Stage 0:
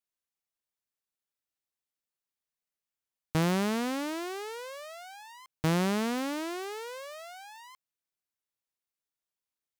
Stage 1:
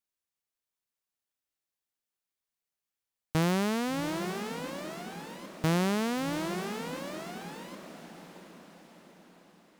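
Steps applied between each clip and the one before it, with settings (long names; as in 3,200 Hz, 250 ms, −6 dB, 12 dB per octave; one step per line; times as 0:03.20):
feedback delay with all-pass diffusion 720 ms, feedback 50%, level −9.5 dB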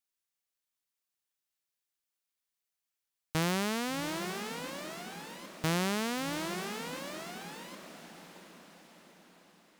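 tilt shelving filter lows −3.5 dB, about 1,100 Hz
level −1.5 dB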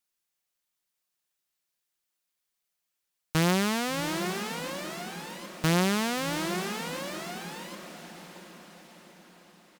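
comb filter 5.6 ms, depth 34%
level +4.5 dB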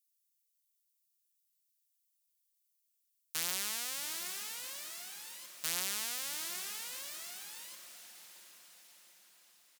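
first difference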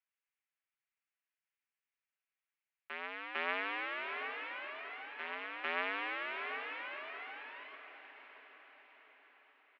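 backwards echo 451 ms −6.5 dB
single-sideband voice off tune +79 Hz 200–2,400 Hz
level +8.5 dB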